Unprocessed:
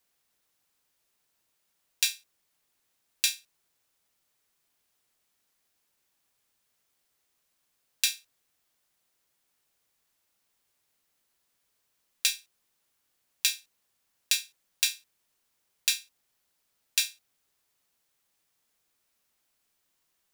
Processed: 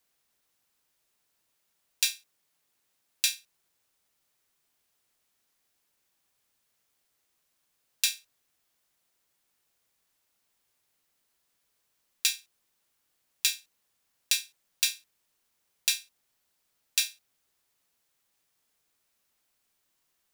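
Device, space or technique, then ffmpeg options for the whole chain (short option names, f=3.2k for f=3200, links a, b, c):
one-band saturation: -filter_complex "[0:a]acrossover=split=580|2800[a][b][c];[b]asoftclip=type=tanh:threshold=-27dB[d];[a][d][c]amix=inputs=3:normalize=0,asettb=1/sr,asplit=3[e][f][g];[e]atrim=end=2.104[h];[f]atrim=start=2.1:end=3.3,asetpts=PTS-STARTPTS,afade=t=in:d=0.004:c=qsin,afade=t=out:st=1.196:d=0.004:c=qsin,highpass=77[i];[g]atrim=start=3.296[j];[h][i]acrossfade=d=0.004:c1=hsin:c2=qsin[k];[k][j]acrossfade=d=0.004:c1=qsin:c2=hsin"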